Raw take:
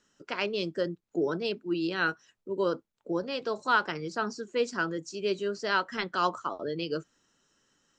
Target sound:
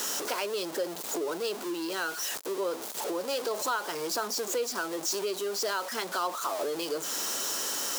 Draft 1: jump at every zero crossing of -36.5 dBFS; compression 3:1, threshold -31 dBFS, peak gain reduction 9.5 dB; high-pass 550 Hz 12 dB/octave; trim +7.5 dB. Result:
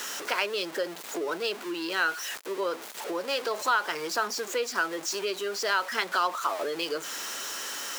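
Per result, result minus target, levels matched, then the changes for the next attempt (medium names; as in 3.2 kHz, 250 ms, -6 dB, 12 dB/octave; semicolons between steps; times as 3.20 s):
2 kHz band +5.5 dB; jump at every zero crossing: distortion -5 dB
add after high-pass: peaking EQ 2 kHz -10 dB 1.8 oct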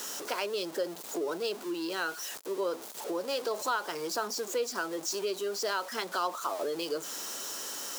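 jump at every zero crossing: distortion -5 dB
change: jump at every zero crossing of -30 dBFS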